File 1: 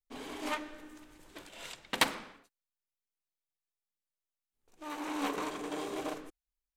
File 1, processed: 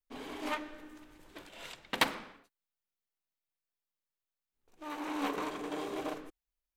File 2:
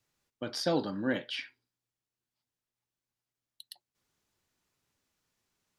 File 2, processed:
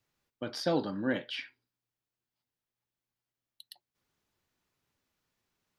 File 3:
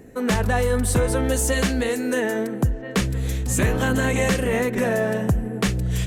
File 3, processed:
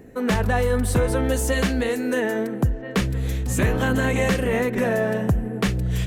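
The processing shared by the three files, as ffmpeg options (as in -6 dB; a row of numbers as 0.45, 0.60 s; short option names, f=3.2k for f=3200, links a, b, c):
-af "equalizer=f=8.1k:t=o:w=1.4:g=-5.5"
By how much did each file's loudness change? -1.0, -0.5, -0.5 LU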